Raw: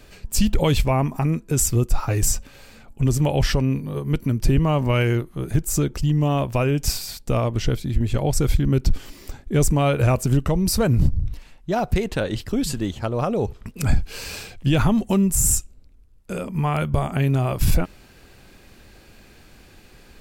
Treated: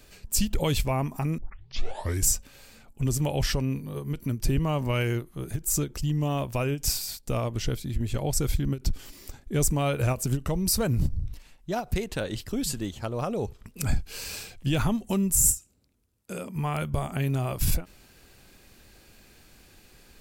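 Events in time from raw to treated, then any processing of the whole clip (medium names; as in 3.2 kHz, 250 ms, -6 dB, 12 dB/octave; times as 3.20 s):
1.38 s: tape start 0.89 s
15.57–16.56 s: high-pass 110 Hz
whole clip: treble shelf 4.7 kHz +8.5 dB; endings held to a fixed fall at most 280 dB/s; trim -7 dB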